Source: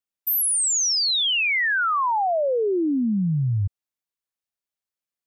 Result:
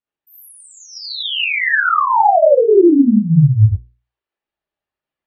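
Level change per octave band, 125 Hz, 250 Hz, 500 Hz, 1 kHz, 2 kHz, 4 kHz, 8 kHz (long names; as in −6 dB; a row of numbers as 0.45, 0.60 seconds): +11.5 dB, +11.0 dB, +12.0 dB, +9.0 dB, +5.5 dB, −1.0 dB, below −15 dB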